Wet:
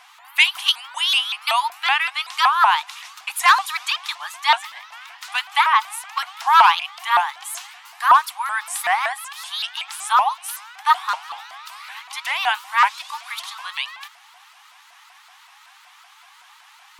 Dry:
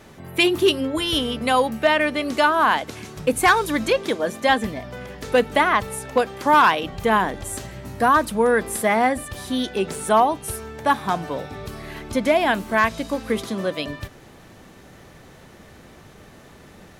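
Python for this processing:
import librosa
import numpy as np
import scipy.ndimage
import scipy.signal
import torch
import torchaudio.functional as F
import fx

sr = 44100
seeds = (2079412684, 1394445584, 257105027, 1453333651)

y = scipy.signal.sosfilt(scipy.signal.cheby1(6, 6, 800.0, 'highpass', fs=sr, output='sos'), x)
y = fx.vibrato_shape(y, sr, shape='saw_up', rate_hz=5.3, depth_cents=250.0)
y = y * librosa.db_to_amplitude(6.0)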